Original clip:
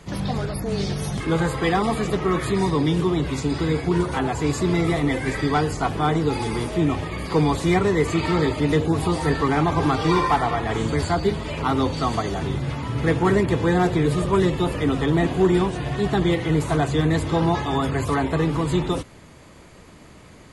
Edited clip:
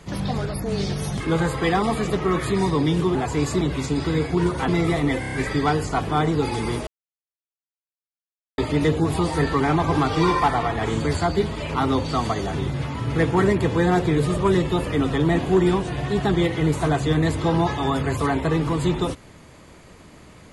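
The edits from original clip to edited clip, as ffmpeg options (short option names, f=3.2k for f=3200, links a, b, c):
-filter_complex "[0:a]asplit=10[a][b][c][d][e][f][g][h][i][j];[a]atrim=end=3.152[k];[b]atrim=start=4.218:end=4.682[l];[c]atrim=start=3.148:end=4.222[m];[d]atrim=start=4.678:end=5.232[n];[e]atrim=start=5.198:end=5.232[o];[f]atrim=start=5.198:end=5.232[p];[g]atrim=start=5.198:end=5.232[q];[h]atrim=start=5.198:end=6.75,asetpts=PTS-STARTPTS,afade=t=out:st=1.548:d=0.004:c=hsin[r];[i]atrim=start=6.75:end=8.46,asetpts=PTS-STARTPTS,volume=0[s];[j]atrim=start=8.46,asetpts=PTS-STARTPTS,afade=t=in:d=0.004:c=hsin[t];[k][l]acrossfade=d=0.004:c1=hsin:c2=hsin[u];[u][m]acrossfade=d=0.004:c1=hsin:c2=hsin[v];[v][n]acrossfade=d=0.004:c1=hsin:c2=hsin[w];[w][o]acrossfade=d=0.004:c1=hsin:c2=hsin[x];[x][p]acrossfade=d=0.004:c1=hsin:c2=hsin[y];[y][q]acrossfade=d=0.004:c1=hsin:c2=hsin[z];[r][s][t]concat=n=3:v=0:a=1[aa];[z][aa]acrossfade=d=0.004:c1=hsin:c2=hsin"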